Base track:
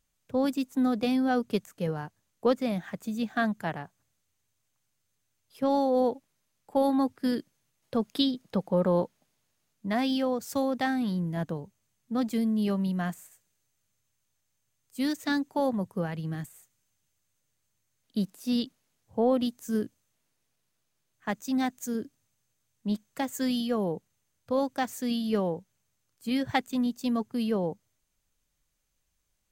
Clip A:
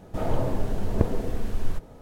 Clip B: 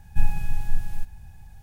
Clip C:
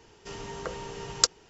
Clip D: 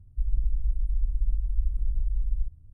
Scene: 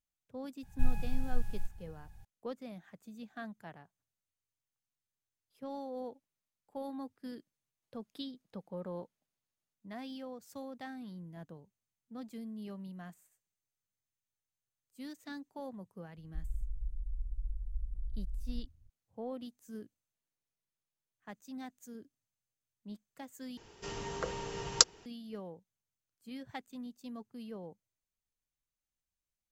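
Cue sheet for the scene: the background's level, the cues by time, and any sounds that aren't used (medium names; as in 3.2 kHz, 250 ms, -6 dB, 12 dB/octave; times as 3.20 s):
base track -17 dB
0.63 s: add B -9 dB
16.17 s: add D -12.5 dB
23.57 s: replace with C -1.5 dB
not used: A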